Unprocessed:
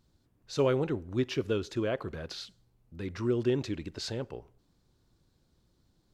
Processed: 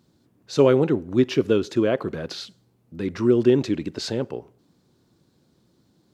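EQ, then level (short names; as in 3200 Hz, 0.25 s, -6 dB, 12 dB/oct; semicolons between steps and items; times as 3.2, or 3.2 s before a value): HPF 210 Hz 12 dB/oct; low shelf 330 Hz +11 dB; +6.5 dB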